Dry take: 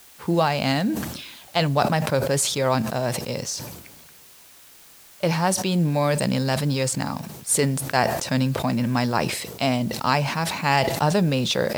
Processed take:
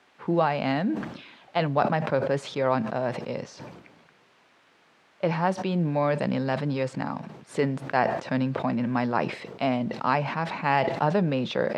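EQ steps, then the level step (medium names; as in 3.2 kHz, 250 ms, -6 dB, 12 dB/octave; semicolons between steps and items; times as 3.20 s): band-pass 160–2200 Hz; -2.0 dB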